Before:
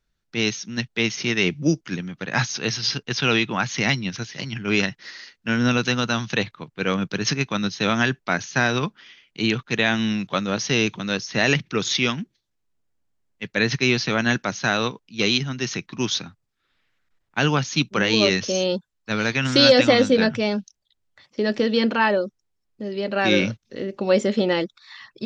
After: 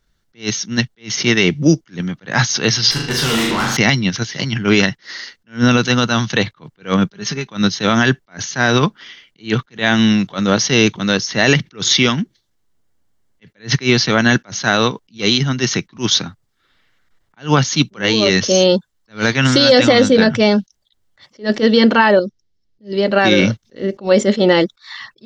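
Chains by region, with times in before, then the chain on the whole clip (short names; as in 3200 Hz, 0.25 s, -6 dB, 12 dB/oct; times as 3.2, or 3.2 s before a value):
2.91–3.77 flutter echo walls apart 6.7 m, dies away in 0.59 s + tube stage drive 26 dB, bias 0.5 + doubler 13 ms -3.5 dB
7.06–7.51 comb 5 ms, depth 52% + compressor 10:1, threshold -28 dBFS
22.19–22.93 Chebyshev low-pass 5400 Hz, order 3 + bell 1000 Hz -13.5 dB 1.9 oct
whole clip: notch 2500 Hz, Q 8.8; maximiser +11.5 dB; attack slew limiter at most 260 dB/s; gain -1 dB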